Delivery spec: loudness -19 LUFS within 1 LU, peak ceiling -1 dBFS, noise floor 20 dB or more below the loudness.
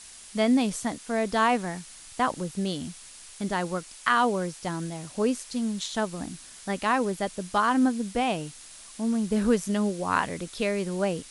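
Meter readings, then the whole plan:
noise floor -47 dBFS; noise floor target -48 dBFS; loudness -27.5 LUFS; peak level -7.5 dBFS; loudness target -19.0 LUFS
-> noise print and reduce 6 dB; trim +8.5 dB; peak limiter -1 dBFS

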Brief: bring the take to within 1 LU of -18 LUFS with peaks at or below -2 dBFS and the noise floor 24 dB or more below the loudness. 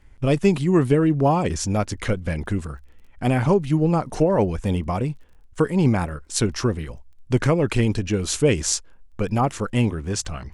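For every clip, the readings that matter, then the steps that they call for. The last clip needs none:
tick rate 22 per s; loudness -22.0 LUFS; peak level -5.0 dBFS; loudness target -18.0 LUFS
-> de-click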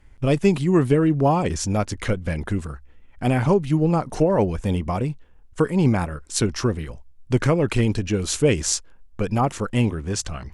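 tick rate 0.095 per s; loudness -22.0 LUFS; peak level -5.0 dBFS; loudness target -18.0 LUFS
-> trim +4 dB; peak limiter -2 dBFS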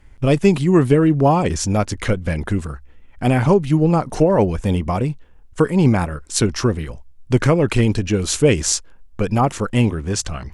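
loudness -18.0 LUFS; peak level -2.0 dBFS; noise floor -45 dBFS

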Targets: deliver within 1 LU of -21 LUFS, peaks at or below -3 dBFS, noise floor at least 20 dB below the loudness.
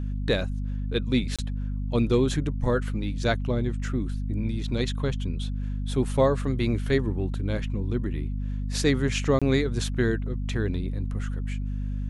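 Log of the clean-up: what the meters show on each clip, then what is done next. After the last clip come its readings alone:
dropouts 2; longest dropout 26 ms; hum 50 Hz; highest harmonic 250 Hz; hum level -27 dBFS; loudness -27.5 LUFS; peak level -9.5 dBFS; loudness target -21.0 LUFS
-> interpolate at 1.36/9.39 s, 26 ms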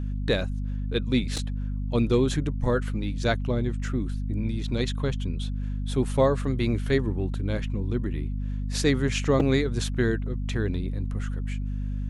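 dropouts 0; hum 50 Hz; highest harmonic 250 Hz; hum level -27 dBFS
-> de-hum 50 Hz, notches 5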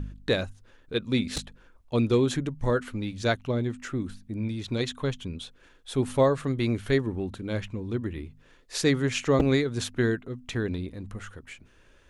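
hum not found; loudness -28.0 LUFS; peak level -8.0 dBFS; loudness target -21.0 LUFS
-> trim +7 dB; peak limiter -3 dBFS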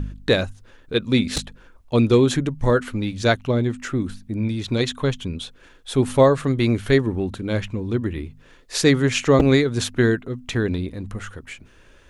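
loudness -21.0 LUFS; peak level -3.0 dBFS; noise floor -50 dBFS

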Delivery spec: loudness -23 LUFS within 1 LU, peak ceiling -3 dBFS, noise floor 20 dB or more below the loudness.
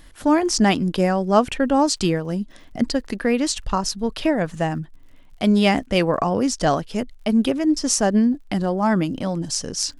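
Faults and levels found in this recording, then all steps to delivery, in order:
tick rate 54 per s; loudness -21.0 LUFS; peak level -3.0 dBFS; loudness target -23.0 LUFS
-> de-click; trim -2 dB

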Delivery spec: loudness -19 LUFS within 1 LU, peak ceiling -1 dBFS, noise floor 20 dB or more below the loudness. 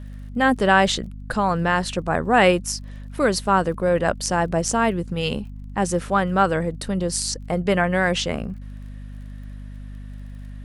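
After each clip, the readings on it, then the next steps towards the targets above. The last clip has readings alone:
tick rate 30 per s; hum 50 Hz; highest harmonic 250 Hz; hum level -33 dBFS; loudness -21.5 LUFS; peak level -2.5 dBFS; loudness target -19.0 LUFS
-> de-click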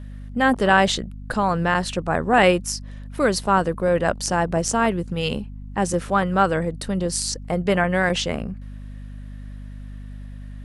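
tick rate 0 per s; hum 50 Hz; highest harmonic 250 Hz; hum level -33 dBFS
-> hum notches 50/100/150/200/250 Hz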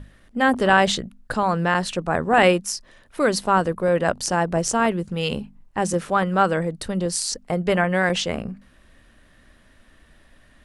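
hum not found; loudness -21.5 LUFS; peak level -2.5 dBFS; loudness target -19.0 LUFS
-> trim +2.5 dB; peak limiter -1 dBFS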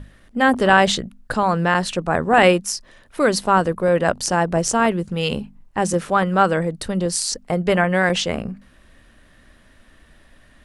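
loudness -19.0 LUFS; peak level -1.0 dBFS; noise floor -52 dBFS

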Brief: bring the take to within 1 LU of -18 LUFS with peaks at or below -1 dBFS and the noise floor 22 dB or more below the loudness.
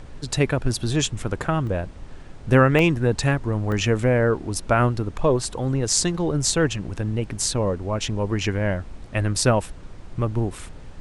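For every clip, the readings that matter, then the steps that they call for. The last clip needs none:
dropouts 3; longest dropout 1.2 ms; noise floor -40 dBFS; noise floor target -45 dBFS; loudness -22.5 LUFS; peak level -2.5 dBFS; loudness target -18.0 LUFS
-> interpolate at 1.67/2.79/3.72 s, 1.2 ms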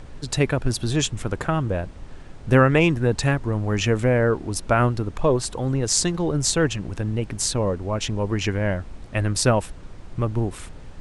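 dropouts 0; noise floor -40 dBFS; noise floor target -45 dBFS
-> noise print and reduce 6 dB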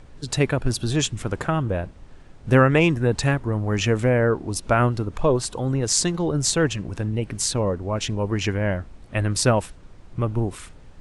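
noise floor -46 dBFS; loudness -22.5 LUFS; peak level -2.5 dBFS; loudness target -18.0 LUFS
-> trim +4.5 dB; peak limiter -1 dBFS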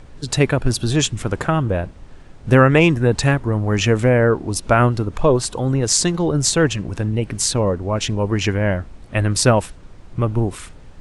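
loudness -18.5 LUFS; peak level -1.0 dBFS; noise floor -41 dBFS

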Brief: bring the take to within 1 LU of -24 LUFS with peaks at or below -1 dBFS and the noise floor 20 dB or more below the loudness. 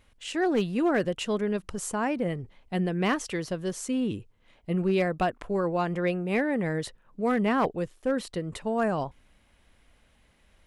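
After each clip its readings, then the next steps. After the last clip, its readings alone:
clipped samples 0.4%; clipping level -18.0 dBFS; loudness -28.5 LUFS; peak level -18.0 dBFS; loudness target -24.0 LUFS
-> clip repair -18 dBFS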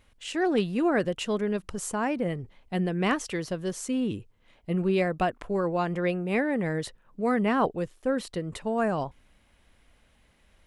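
clipped samples 0.0%; loudness -28.5 LUFS; peak level -11.5 dBFS; loudness target -24.0 LUFS
-> trim +4.5 dB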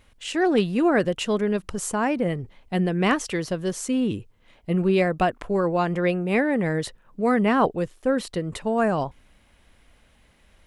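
loudness -24.0 LUFS; peak level -7.0 dBFS; noise floor -59 dBFS

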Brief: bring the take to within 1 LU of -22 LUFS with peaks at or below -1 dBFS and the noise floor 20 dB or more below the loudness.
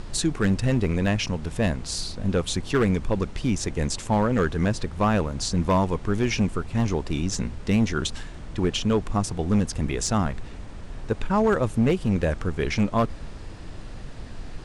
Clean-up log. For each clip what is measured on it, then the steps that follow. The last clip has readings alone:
clipped samples 1.1%; clipping level -14.5 dBFS; noise floor -38 dBFS; noise floor target -45 dBFS; loudness -25.0 LUFS; peak level -14.5 dBFS; loudness target -22.0 LUFS
-> clip repair -14.5 dBFS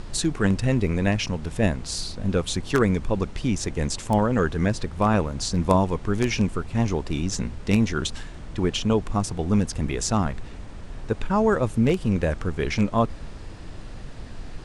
clipped samples 0.0%; noise floor -38 dBFS; noise floor target -45 dBFS
-> noise print and reduce 7 dB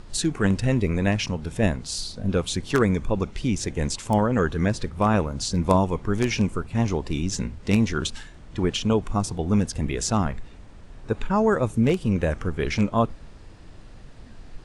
noise floor -45 dBFS; loudness -24.5 LUFS; peak level -5.5 dBFS; loudness target -22.0 LUFS
-> trim +2.5 dB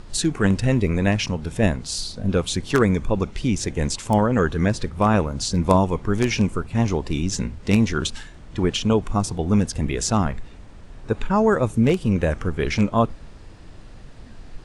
loudness -22.0 LUFS; peak level -3.0 dBFS; noise floor -42 dBFS

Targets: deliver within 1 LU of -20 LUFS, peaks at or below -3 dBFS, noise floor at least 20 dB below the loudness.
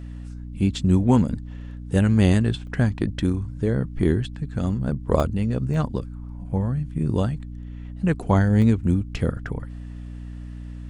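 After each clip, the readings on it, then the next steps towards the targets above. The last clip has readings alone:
dropouts 4; longest dropout 1.1 ms; hum 60 Hz; highest harmonic 300 Hz; hum level -32 dBFS; loudness -23.0 LUFS; peak level -4.5 dBFS; loudness target -20.0 LUFS
-> interpolate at 2.67/5.20/5.74/8.62 s, 1.1 ms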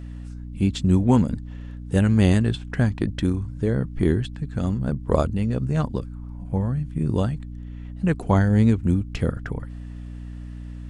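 dropouts 0; hum 60 Hz; highest harmonic 300 Hz; hum level -32 dBFS
-> de-hum 60 Hz, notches 5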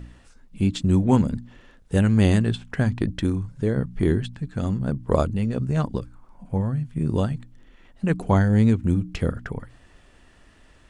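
hum not found; loudness -23.5 LUFS; peak level -4.5 dBFS; loudness target -20.0 LUFS
-> trim +3.5 dB; peak limiter -3 dBFS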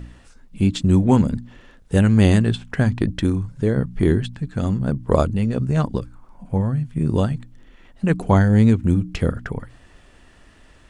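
loudness -20.0 LUFS; peak level -3.0 dBFS; noise floor -50 dBFS

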